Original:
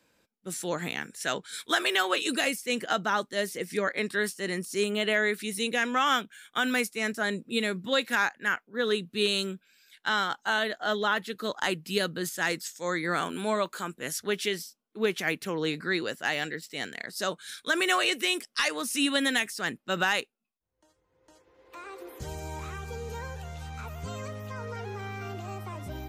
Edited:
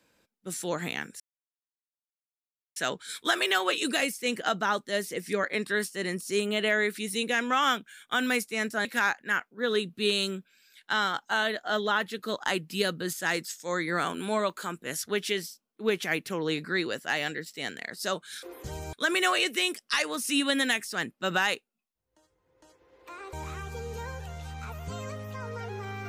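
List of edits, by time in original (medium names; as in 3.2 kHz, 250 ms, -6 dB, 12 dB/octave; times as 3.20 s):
1.20 s: insert silence 1.56 s
7.29–8.01 s: delete
21.99–22.49 s: move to 17.59 s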